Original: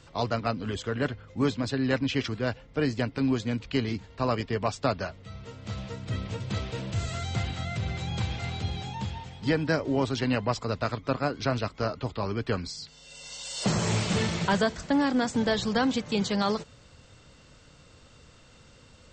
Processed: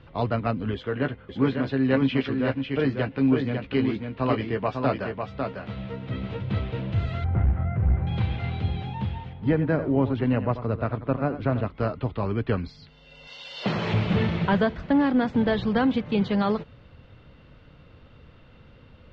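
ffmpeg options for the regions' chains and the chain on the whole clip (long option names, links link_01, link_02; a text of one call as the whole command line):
ffmpeg -i in.wav -filter_complex "[0:a]asettb=1/sr,asplit=3[link_01][link_02][link_03];[link_01]atrim=end=0.744[link_04];[link_02]atrim=start=0.74:end=6.42,asetpts=PTS-STARTPTS,afade=type=in:duration=0.004:curve=qsin,afade=type=out:start_time=5.676:duration=0.004:curve=qsin,lowshelf=frequency=120:gain=-10,asplit=2[link_05][link_06];[link_06]adelay=15,volume=-8dB[link_07];[link_05][link_07]amix=inputs=2:normalize=0,atrim=end_sample=250488,aecho=1:1:549:0.562,atrim=end_sample=250488[link_08];[link_03]atrim=start=6.416[link_09];[link_04][link_08]acrossfade=duration=0.004:curve1=hsin:curve2=qsin[link_10];[link_10][link_09]acrossfade=duration=0.004:curve1=qsin:curve2=hsin,asettb=1/sr,asplit=3[link_11][link_12][link_13];[link_11]atrim=end=7.244[link_14];[link_12]atrim=start=7.24:end=8.07,asetpts=PTS-STARTPTS,afade=type=in:duration=0.004:curve=qsin,afade=type=out:start_time=0.826:duration=0.004:curve=qsin,lowpass=frequency=1700:width=0.5412,lowpass=frequency=1700:width=1.3066,equalizer=frequency=63:width=2.6:gain=13.5,aeval=exprs='clip(val(0),-1,0.0562)':channel_layout=same[link_15];[link_13]atrim=start=8.066[link_16];[link_14][link_15]acrossfade=duration=0.004:curve1=hsin:curve2=qsin[link_17];[link_17][link_16]acrossfade=duration=0.004:curve1=qsin:curve2=hsin,asettb=1/sr,asplit=3[link_18][link_19][link_20];[link_18]atrim=end=9.334[link_21];[link_19]atrim=start=9.33:end=11.7,asetpts=PTS-STARTPTS,afade=type=in:duration=0.004:curve=qsin,afade=type=out:start_time=2.366:duration=0.004:curve=qsin,lowpass=frequency=1500:poles=1,aecho=1:1:89:0.251,atrim=end_sample=104517[link_22];[link_20]atrim=start=11.696[link_23];[link_21][link_22]acrossfade=duration=0.004:curve1=hsin:curve2=qsin[link_24];[link_24][link_23]acrossfade=duration=0.004:curve1=qsin:curve2=hsin,asettb=1/sr,asplit=3[link_25][link_26][link_27];[link_25]atrim=end=13.274[link_28];[link_26]atrim=start=13.27:end=13.94,asetpts=PTS-STARTPTS,afade=type=in:duration=0.004:curve=qsin,afade=type=out:start_time=0.666:duration=0.004:curve=qsin,acrossover=split=6200[link_29][link_30];[link_30]acompressor=threshold=-53dB:ratio=4:attack=1:release=60[link_31];[link_29][link_31]amix=inputs=2:normalize=0,highpass=frequency=280:poles=1,highshelf=frequency=3000:gain=9.5[link_32];[link_27]atrim=start=13.936[link_33];[link_28][link_32]acrossfade=duration=0.004:curve1=hsin:curve2=qsin[link_34];[link_34][link_33]acrossfade=duration=0.004:curve1=qsin:curve2=hsin,lowpass=frequency=3300:width=0.5412,lowpass=frequency=3300:width=1.3066,lowshelf=frequency=450:gain=5.5" out.wav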